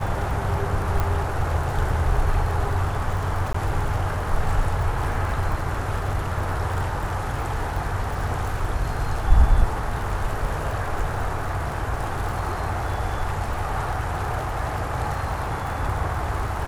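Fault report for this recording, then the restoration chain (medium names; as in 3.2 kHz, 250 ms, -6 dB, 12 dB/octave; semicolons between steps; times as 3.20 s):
crackle 43 per s -29 dBFS
1.00 s: pop
3.53–3.54 s: dropout 14 ms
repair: de-click; interpolate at 3.53 s, 14 ms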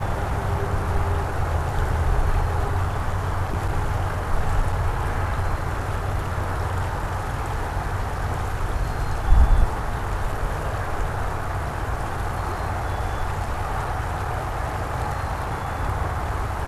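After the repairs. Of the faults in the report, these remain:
nothing left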